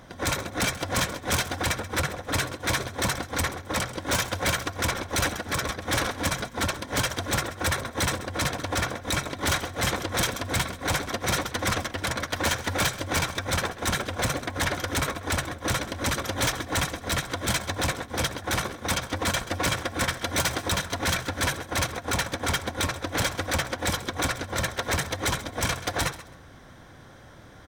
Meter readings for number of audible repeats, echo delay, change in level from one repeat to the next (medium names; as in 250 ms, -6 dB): 2, 132 ms, -14.5 dB